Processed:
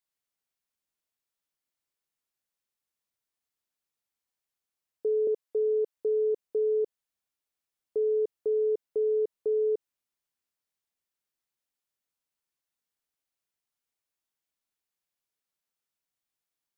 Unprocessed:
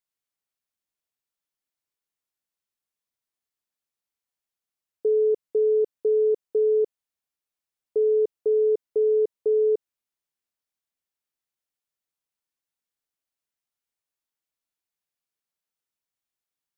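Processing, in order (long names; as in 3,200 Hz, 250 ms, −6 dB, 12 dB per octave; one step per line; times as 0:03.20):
0:05.27–0:05.97: high-pass filter 380 Hz 12 dB per octave
brickwall limiter −22.5 dBFS, peak gain reduction 5.5 dB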